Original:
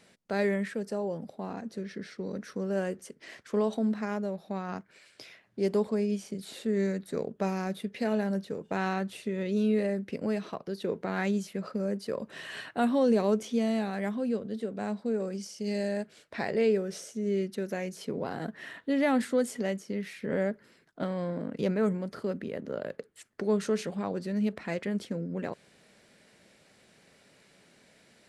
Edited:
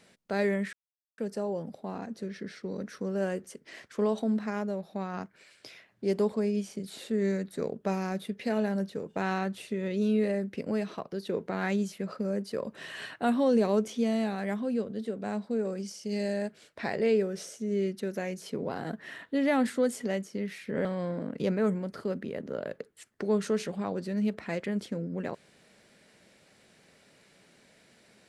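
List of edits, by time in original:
0.73 insert silence 0.45 s
20.4–21.04 cut

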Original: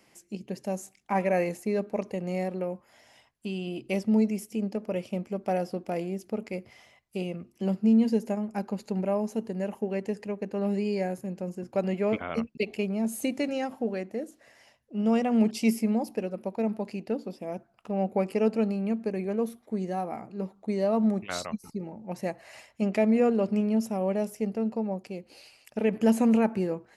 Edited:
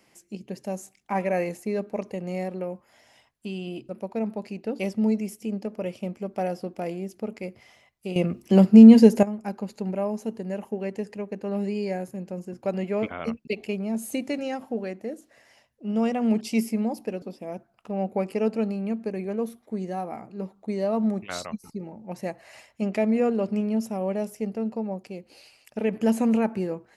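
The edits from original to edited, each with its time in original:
7.26–8.33 gain +12 dB
16.32–17.22 move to 3.89

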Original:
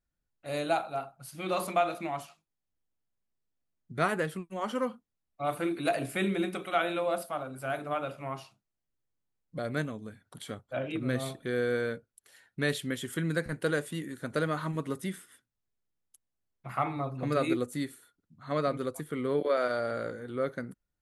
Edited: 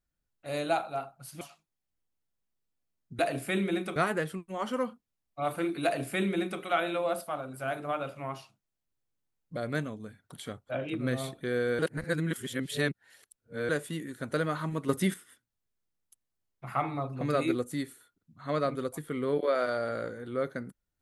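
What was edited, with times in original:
1.41–2.2 cut
5.86–6.63 copy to 3.98
11.81–13.71 reverse
14.91–15.16 gain +7.5 dB

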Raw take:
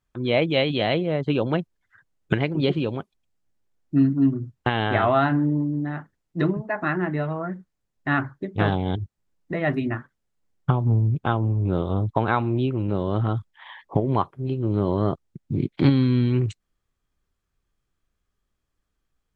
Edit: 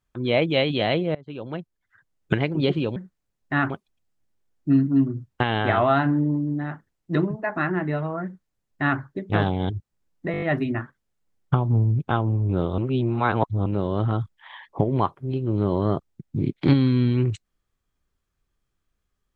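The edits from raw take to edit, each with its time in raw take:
1.15–2.34 fade in, from -23 dB
7.51–8.25 copy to 2.96
9.58 stutter 0.02 s, 6 plays
11.94–12.82 reverse

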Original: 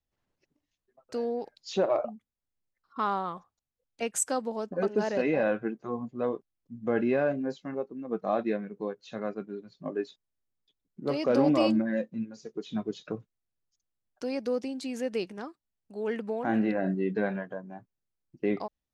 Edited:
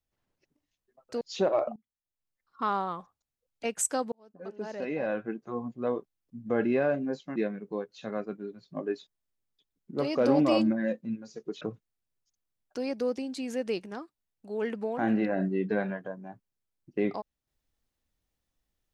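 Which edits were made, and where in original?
1.21–1.58 cut
2.13–3.01 fade in, from -21 dB
4.49–6.08 fade in
7.73–8.45 cut
12.7–13.07 cut

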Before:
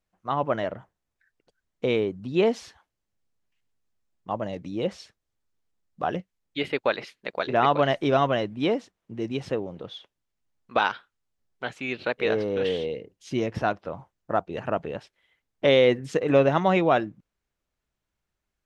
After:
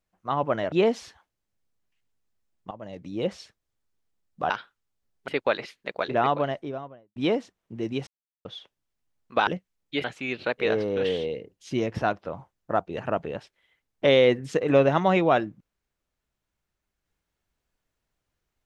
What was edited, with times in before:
0.72–2.32 cut
4.31–4.85 fade in, from -16.5 dB
6.1–6.67 swap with 10.86–11.64
7.3–8.55 studio fade out
9.46–9.84 mute

